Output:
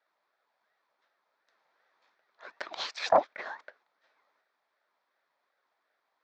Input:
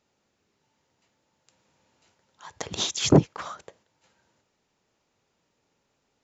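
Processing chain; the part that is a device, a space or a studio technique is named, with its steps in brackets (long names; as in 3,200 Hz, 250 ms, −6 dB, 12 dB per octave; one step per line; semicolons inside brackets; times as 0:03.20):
high-pass filter 170 Hz
voice changer toy (ring modulator whose carrier an LFO sweeps 710 Hz, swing 50%, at 2.7 Hz; loudspeaker in its box 560–4,100 Hz, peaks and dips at 620 Hz +4 dB, 1,000 Hz +3 dB, 1,800 Hz +3 dB, 2,900 Hz −10 dB)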